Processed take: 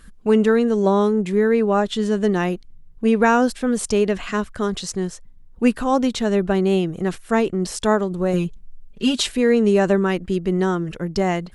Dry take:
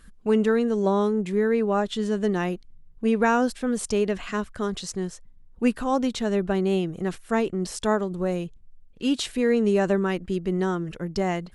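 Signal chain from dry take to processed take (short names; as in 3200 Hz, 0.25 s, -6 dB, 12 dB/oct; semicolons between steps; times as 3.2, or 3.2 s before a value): 8.33–9.29 comb 5 ms, depth 94%; gain +5 dB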